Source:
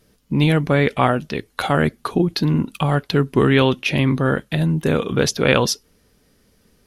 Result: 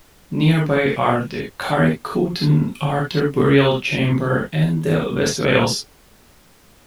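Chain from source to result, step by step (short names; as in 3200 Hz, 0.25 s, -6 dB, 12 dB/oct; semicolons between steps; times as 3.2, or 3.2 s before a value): non-linear reverb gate 0.1 s flat, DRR -3 dB; vibrato 0.66 Hz 53 cents; added noise pink -46 dBFS; gain -5 dB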